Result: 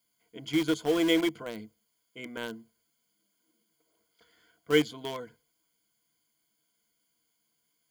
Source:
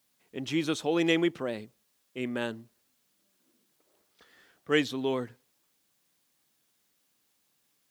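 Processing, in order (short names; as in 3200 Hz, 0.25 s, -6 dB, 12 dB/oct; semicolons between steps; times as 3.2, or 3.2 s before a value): ripple EQ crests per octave 1.8, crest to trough 15 dB; in parallel at -8 dB: bit-crush 4-bit; on the sum: gain -6.5 dB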